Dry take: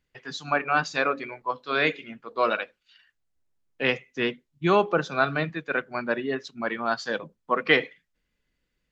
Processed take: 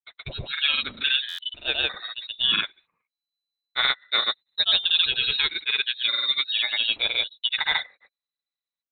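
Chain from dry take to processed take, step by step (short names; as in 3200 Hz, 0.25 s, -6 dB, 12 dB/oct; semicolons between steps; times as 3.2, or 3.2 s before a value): gate -46 dBFS, range -24 dB; dynamic EQ 1300 Hz, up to -6 dB, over -39 dBFS, Q 2.9; limiter -16.5 dBFS, peak gain reduction 10.5 dB; grains 0.1 s, pitch spread up and down by 0 st; inverted band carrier 4000 Hz; stuck buffer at 1.28, samples 512, times 8; gain +6 dB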